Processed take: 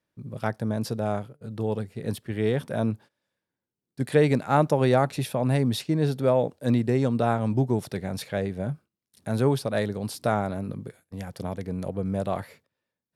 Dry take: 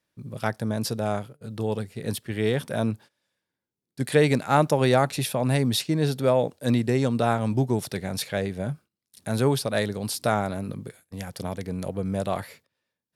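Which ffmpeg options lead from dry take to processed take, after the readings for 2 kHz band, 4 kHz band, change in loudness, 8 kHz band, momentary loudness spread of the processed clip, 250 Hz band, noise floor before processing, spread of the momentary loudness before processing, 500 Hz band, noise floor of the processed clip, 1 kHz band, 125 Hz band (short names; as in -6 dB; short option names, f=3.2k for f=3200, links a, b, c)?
-3.5 dB, -6.5 dB, -0.5 dB, -7.5 dB, 13 LU, 0.0 dB, under -85 dBFS, 13 LU, -0.5 dB, under -85 dBFS, -1.5 dB, 0.0 dB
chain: -af "highshelf=f=2k:g=-8"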